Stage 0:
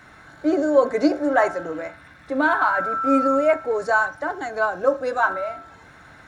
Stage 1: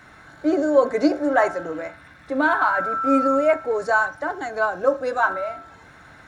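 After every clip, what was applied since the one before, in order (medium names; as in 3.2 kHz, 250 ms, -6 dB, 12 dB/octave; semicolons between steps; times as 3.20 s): no audible change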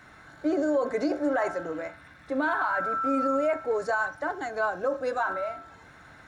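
peak limiter -14 dBFS, peak gain reduction 8.5 dB; trim -4 dB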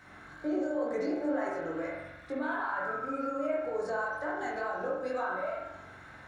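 compression 4:1, threshold -31 dBFS, peak gain reduction 8.5 dB; chorus 2.1 Hz, delay 20 ms, depth 4.5 ms; reverberation RT60 0.85 s, pre-delay 43 ms, DRR -1 dB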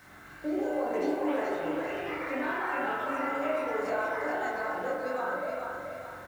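ever faster or slower copies 255 ms, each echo +5 st, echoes 2, each echo -6 dB; word length cut 10-bit, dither none; feedback delay 428 ms, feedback 42%, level -5.5 dB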